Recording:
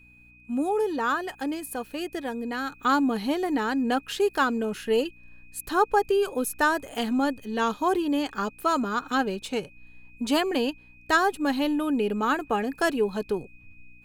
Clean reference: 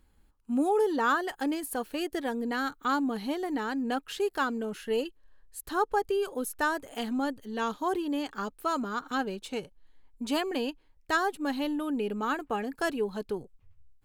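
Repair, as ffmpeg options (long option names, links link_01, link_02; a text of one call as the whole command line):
ffmpeg -i in.wav -af "bandreject=frequency=60.5:width_type=h:width=4,bandreject=frequency=121:width_type=h:width=4,bandreject=frequency=181.5:width_type=h:width=4,bandreject=frequency=242:width_type=h:width=4,bandreject=frequency=302.5:width_type=h:width=4,bandreject=frequency=2500:width=30,asetnsamples=nb_out_samples=441:pad=0,asendcmd='2.72 volume volume -5.5dB',volume=0dB" out.wav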